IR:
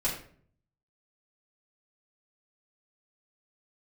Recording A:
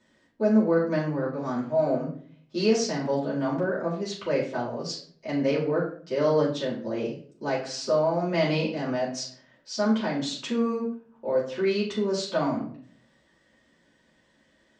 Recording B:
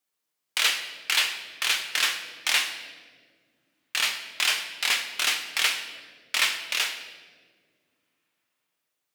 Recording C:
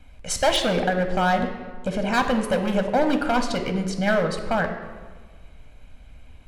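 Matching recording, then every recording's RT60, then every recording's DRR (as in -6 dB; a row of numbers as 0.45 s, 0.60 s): A; 0.50 s, 1.9 s, 1.4 s; -9.0 dB, 3.5 dB, 5.5 dB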